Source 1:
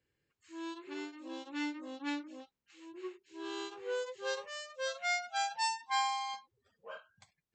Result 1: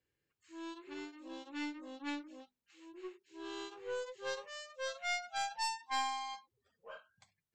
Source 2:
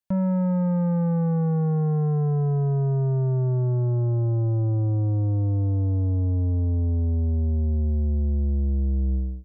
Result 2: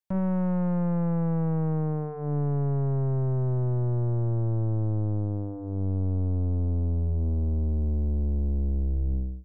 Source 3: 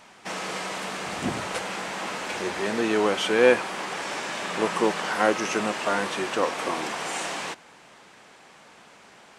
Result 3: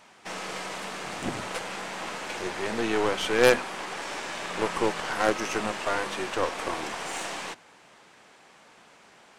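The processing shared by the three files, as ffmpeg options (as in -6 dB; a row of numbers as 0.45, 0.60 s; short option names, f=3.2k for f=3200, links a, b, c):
-af "bandreject=f=50:t=h:w=6,bandreject=f=100:t=h:w=6,bandreject=f=150:t=h:w=6,bandreject=f=200:t=h:w=6,bandreject=f=250:t=h:w=6,aeval=exprs='0.596*(cos(1*acos(clip(val(0)/0.596,-1,1)))-cos(1*PI/2))+0.0668*(cos(3*acos(clip(val(0)/0.596,-1,1)))-cos(3*PI/2))+0.0944*(cos(6*acos(clip(val(0)/0.596,-1,1)))-cos(6*PI/2))+0.0944*(cos(8*acos(clip(val(0)/0.596,-1,1)))-cos(8*PI/2))':c=same"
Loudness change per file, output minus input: -3.5, -4.0, -2.5 LU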